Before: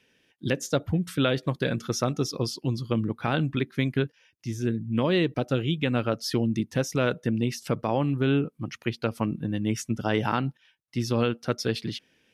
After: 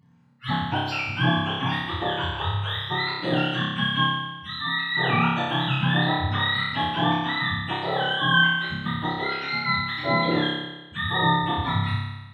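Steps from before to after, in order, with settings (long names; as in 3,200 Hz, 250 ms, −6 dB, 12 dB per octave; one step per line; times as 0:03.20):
frequency axis turned over on the octave scale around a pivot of 660 Hz
flutter between parallel walls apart 5.1 metres, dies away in 1.1 s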